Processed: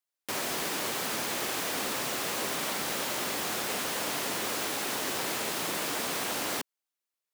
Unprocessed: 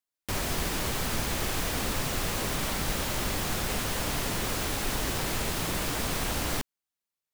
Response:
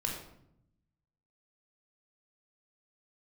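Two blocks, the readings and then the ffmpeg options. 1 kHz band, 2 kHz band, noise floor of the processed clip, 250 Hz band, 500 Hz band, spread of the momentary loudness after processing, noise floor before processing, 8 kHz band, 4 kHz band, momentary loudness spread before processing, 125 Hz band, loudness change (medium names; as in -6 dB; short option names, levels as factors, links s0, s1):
0.0 dB, 0.0 dB, under -85 dBFS, -4.0 dB, -0.5 dB, 1 LU, under -85 dBFS, 0.0 dB, 0.0 dB, 1 LU, -14.0 dB, -1.0 dB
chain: -af "highpass=280"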